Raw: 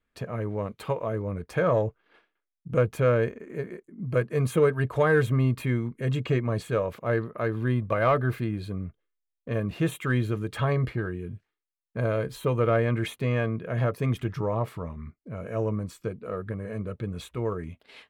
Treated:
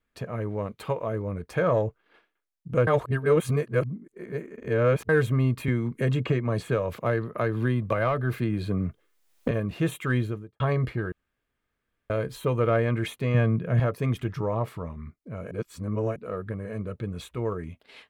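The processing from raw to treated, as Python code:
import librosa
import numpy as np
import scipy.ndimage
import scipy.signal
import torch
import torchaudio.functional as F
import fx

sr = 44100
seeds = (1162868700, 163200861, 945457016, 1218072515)

y = fx.band_squash(x, sr, depth_pct=100, at=(5.68, 9.51))
y = fx.studio_fade_out(y, sr, start_s=10.16, length_s=0.44)
y = fx.peak_eq(y, sr, hz=150.0, db=10.0, octaves=1.2, at=(13.34, 13.8))
y = fx.edit(y, sr, fx.reverse_span(start_s=2.87, length_s=2.22),
    fx.room_tone_fill(start_s=11.12, length_s=0.98),
    fx.reverse_span(start_s=15.51, length_s=0.65), tone=tone)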